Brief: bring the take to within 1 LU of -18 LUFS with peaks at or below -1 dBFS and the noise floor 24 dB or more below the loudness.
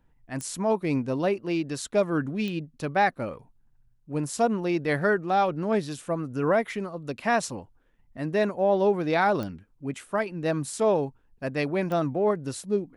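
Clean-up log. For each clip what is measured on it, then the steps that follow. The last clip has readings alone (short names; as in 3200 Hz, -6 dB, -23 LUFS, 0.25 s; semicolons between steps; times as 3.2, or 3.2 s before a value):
clicks 4; loudness -27.0 LUFS; peak -11.5 dBFS; loudness target -18.0 LUFS
-> de-click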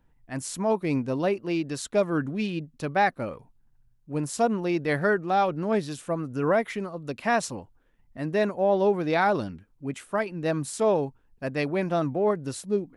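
clicks 0; loudness -27.0 LUFS; peak -11.5 dBFS; loudness target -18.0 LUFS
-> gain +9 dB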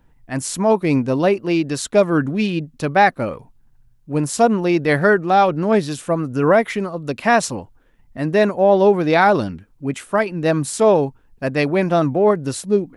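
loudness -18.0 LUFS; peak -2.5 dBFS; noise floor -55 dBFS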